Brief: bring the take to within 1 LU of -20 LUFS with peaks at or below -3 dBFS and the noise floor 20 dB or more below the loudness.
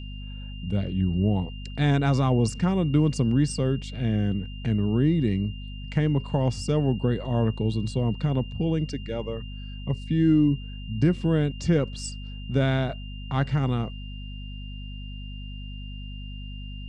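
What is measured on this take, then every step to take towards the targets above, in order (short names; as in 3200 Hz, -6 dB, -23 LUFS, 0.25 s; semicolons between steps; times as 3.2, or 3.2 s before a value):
hum 50 Hz; harmonics up to 250 Hz; hum level -34 dBFS; steady tone 2800 Hz; tone level -45 dBFS; loudness -25.5 LUFS; peak -10.0 dBFS; loudness target -20.0 LUFS
-> de-hum 50 Hz, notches 5; notch 2800 Hz, Q 30; gain +5.5 dB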